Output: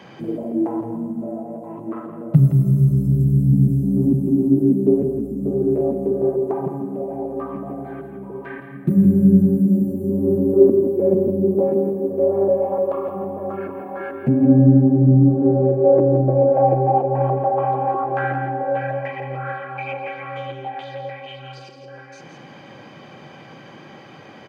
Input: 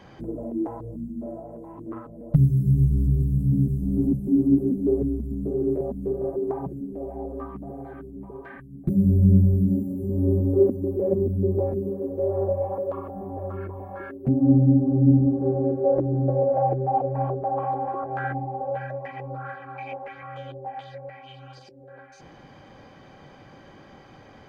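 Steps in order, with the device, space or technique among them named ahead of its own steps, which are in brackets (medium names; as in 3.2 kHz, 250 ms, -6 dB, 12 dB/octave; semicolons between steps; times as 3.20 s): PA in a hall (high-pass 120 Hz 24 dB/octave; peaking EQ 2.6 kHz +5 dB 0.65 oct; delay 167 ms -8 dB; reverberation RT60 2.9 s, pre-delay 3 ms, DRR 8.5 dB); trim +5.5 dB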